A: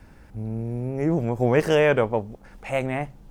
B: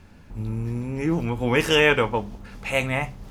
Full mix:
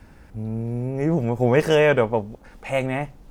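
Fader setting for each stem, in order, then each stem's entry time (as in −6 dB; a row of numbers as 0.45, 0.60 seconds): +1.5, −13.5 decibels; 0.00, 0.00 seconds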